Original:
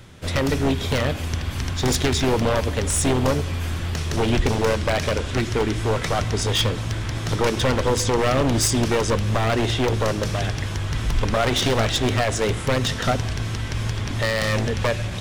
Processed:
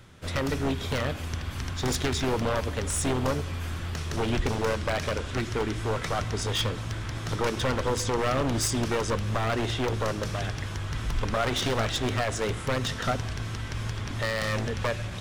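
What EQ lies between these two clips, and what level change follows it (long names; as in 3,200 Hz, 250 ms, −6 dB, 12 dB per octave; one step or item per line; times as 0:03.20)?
parametric band 1,300 Hz +3.5 dB 0.77 octaves
−7.0 dB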